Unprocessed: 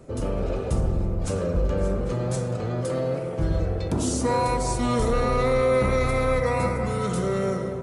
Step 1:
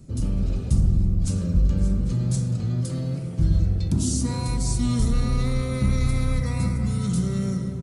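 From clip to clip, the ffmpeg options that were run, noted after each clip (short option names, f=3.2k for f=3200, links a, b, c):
-af "firequalizer=gain_entry='entry(190,0);entry(460,-20);entry(4400,-3)':delay=0.05:min_phase=1,volume=5dB"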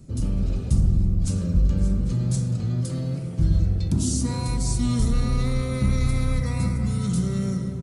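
-af anull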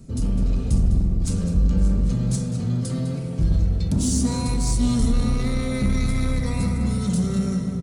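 -filter_complex "[0:a]aecho=1:1:4.4:0.31,asplit=2[a][b];[b]asoftclip=type=hard:threshold=-22.5dB,volume=-3.5dB[c];[a][c]amix=inputs=2:normalize=0,asplit=2[d][e];[e]adelay=204.1,volume=-9dB,highshelf=f=4k:g=-4.59[f];[d][f]amix=inputs=2:normalize=0,volume=-2dB"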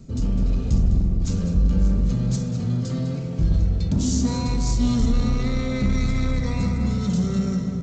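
-af "areverse,acompressor=mode=upward:threshold=-28dB:ratio=2.5,areverse" -ar 16000 -c:a g722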